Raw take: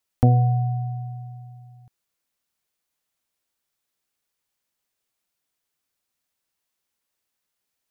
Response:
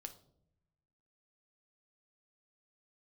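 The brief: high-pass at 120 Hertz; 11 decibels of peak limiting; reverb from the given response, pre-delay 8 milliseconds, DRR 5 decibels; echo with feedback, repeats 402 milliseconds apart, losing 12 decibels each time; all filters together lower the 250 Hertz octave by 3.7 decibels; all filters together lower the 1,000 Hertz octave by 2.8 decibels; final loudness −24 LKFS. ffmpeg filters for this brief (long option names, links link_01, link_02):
-filter_complex "[0:a]highpass=120,equalizer=frequency=250:width_type=o:gain=-3.5,equalizer=frequency=1000:width_type=o:gain=-4.5,alimiter=limit=-18dB:level=0:latency=1,aecho=1:1:402|804|1206:0.251|0.0628|0.0157,asplit=2[link_01][link_02];[1:a]atrim=start_sample=2205,adelay=8[link_03];[link_02][link_03]afir=irnorm=-1:irlink=0,volume=0dB[link_04];[link_01][link_04]amix=inputs=2:normalize=0,volume=2.5dB"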